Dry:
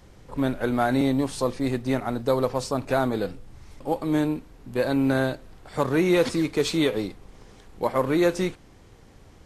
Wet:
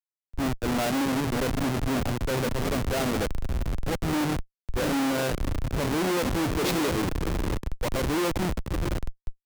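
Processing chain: echo that smears into a reverb 632 ms, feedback 54%, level -9.5 dB; Schmitt trigger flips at -26 dBFS; three bands expanded up and down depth 100%

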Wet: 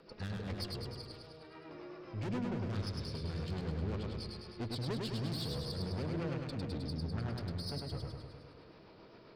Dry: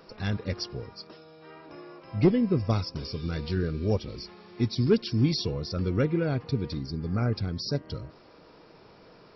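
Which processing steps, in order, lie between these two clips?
resampled via 11.025 kHz; valve stage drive 34 dB, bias 0.55; rotary cabinet horn 7.5 Hz; modulated delay 103 ms, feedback 63%, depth 50 cents, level -3 dB; trim -1.5 dB

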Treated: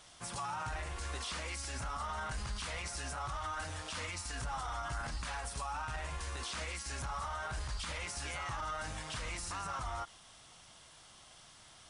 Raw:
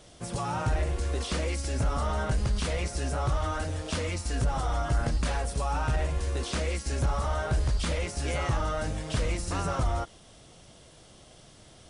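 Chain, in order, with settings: resonant low shelf 700 Hz -10 dB, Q 1.5; peak limiter -29.5 dBFS, peak gain reduction 9.5 dB; trim -1.5 dB

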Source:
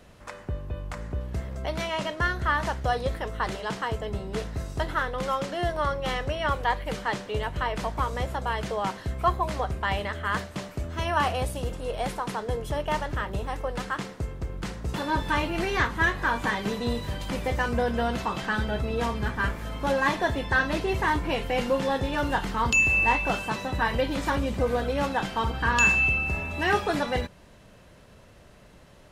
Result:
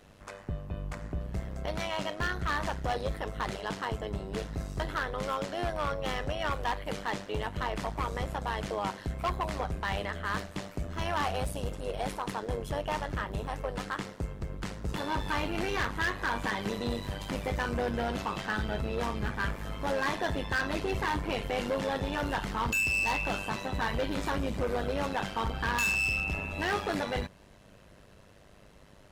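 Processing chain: AM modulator 100 Hz, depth 65%; overload inside the chain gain 25 dB

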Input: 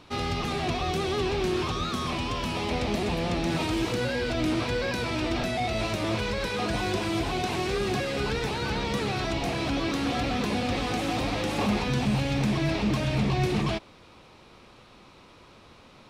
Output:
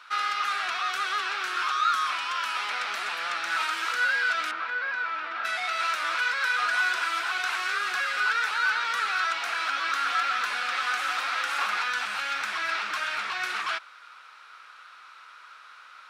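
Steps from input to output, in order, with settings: resonant high-pass 1.4 kHz, resonance Q 6.8; 4.51–5.45 s: tape spacing loss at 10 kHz 31 dB

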